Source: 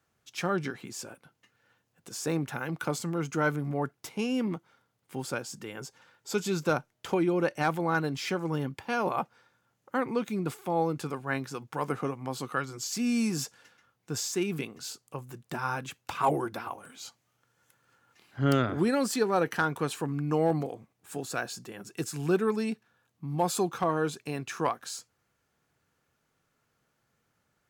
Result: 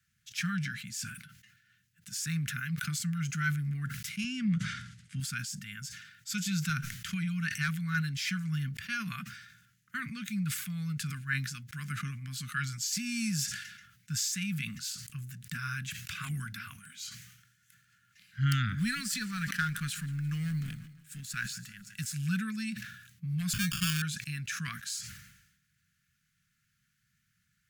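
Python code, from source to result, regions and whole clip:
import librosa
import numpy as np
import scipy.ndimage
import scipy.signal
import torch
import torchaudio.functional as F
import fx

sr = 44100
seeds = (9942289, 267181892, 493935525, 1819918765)

y = fx.chain(x, sr, fx.lowpass(hz=8700.0, slope=24),
    fx.low_shelf(hz=460.0, db=6.0), at=(4.24, 5.2))
y = fx.chain(y, sr, fx.law_mismatch(coded='A'),
    fx.echo_feedback(ms=166, feedback_pct=52, wet_db=-21.0), at=(18.79, 22.13))
y = fx.chain(y, sr, fx.peak_eq(hz=140.0, db=3.5, octaves=1.4),
    fx.sample_hold(seeds[0], rate_hz=2000.0, jitter_pct=0), at=(23.53, 24.02))
y = scipy.signal.sosfilt(scipy.signal.ellip(3, 1.0, 40, [190.0, 1600.0], 'bandstop', fs=sr, output='sos'), y)
y = fx.sustainer(y, sr, db_per_s=59.0)
y = F.gain(torch.from_numpy(y), 2.0).numpy()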